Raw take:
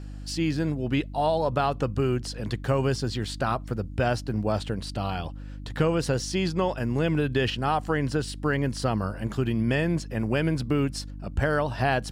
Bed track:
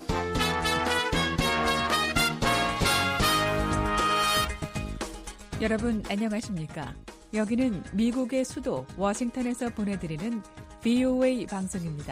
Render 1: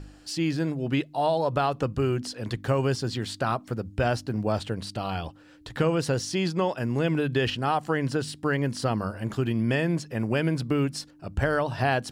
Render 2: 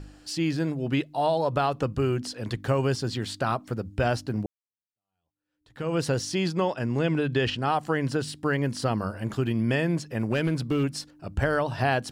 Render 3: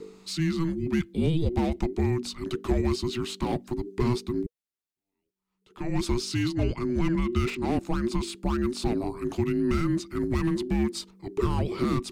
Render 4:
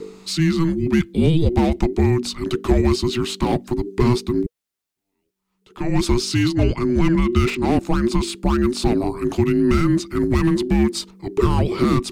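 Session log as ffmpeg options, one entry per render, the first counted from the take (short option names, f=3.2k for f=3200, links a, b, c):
-af "bandreject=f=50:t=h:w=4,bandreject=f=100:t=h:w=4,bandreject=f=150:t=h:w=4,bandreject=f=200:t=h:w=4,bandreject=f=250:t=h:w=4"
-filter_complex "[0:a]asettb=1/sr,asplit=3[a][b][c];[a]atrim=end=6.654[d];[b]atrim=start=6.65:end=7.72,asetpts=PTS-STARTPTS,afade=t=in:d=0.004:c=qsin,afade=t=out:st=1.066:d=0.004:c=qsin,lowpass=8.2k[e];[c]atrim=start=7.716[f];[d][e]acrossfade=d=0.004:c1=hsin:c2=qsin[g];[g][f]acrossfade=d=0.004:c1=qsin:c2=hsin,asettb=1/sr,asplit=3[h][i][j];[h]atrim=end=10.194[k];[i]atrim=start=10.19:end=10.84,asetpts=PTS-STARTPTS,afade=t=in:d=0.004:c=qsin,afade=t=out:st=0.646:d=0.004:c=qsin,volume=19dB,asoftclip=hard,volume=-19dB[l];[j]atrim=start=10.836[m];[k][l]acrossfade=d=0.004:c1=hsin:c2=qsin[n];[n][m]acrossfade=d=0.004:c1=qsin:c2=hsin,asplit=2[o][p];[o]atrim=end=4.46,asetpts=PTS-STARTPTS,afade=t=out:st=4.456:d=0.004:c=hsin[q];[p]atrim=start=4.46,asetpts=PTS-STARTPTS,afade=t=in:d=1.5:c=exp[r];[q][r]concat=n=2:v=0:a=1"
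-filter_complex "[0:a]afreqshift=-490,acrossover=split=520|5200[a][b][c];[b]asoftclip=type=hard:threshold=-33dB[d];[a][d][c]amix=inputs=3:normalize=0"
-af "volume=8.5dB"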